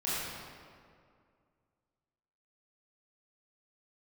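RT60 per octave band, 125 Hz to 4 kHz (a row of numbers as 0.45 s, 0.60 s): 2.4 s, 2.4 s, 2.3 s, 2.1 s, 1.7 s, 1.3 s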